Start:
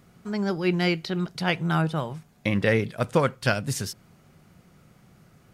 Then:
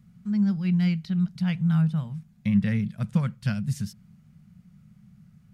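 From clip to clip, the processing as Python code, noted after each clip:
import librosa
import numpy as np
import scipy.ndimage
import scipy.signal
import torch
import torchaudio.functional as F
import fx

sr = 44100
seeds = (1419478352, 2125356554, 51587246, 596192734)

y = fx.curve_eq(x, sr, hz=(100.0, 210.0, 300.0, 1900.0), db=(0, 6, -22, -11))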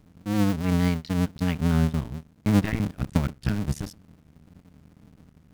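y = fx.cycle_switch(x, sr, every=2, mode='muted')
y = y * librosa.db_to_amplitude(3.0)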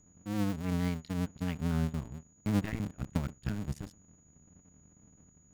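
y = fx.wiener(x, sr, points=9)
y = y + 10.0 ** (-55.0 / 20.0) * np.sin(2.0 * np.pi * 6800.0 * np.arange(len(y)) / sr)
y = y * librosa.db_to_amplitude(-9.0)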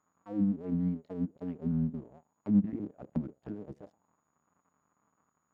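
y = fx.auto_wah(x, sr, base_hz=210.0, top_hz=1200.0, q=3.7, full_db=-26.5, direction='down')
y = y * librosa.db_to_amplitude(7.5)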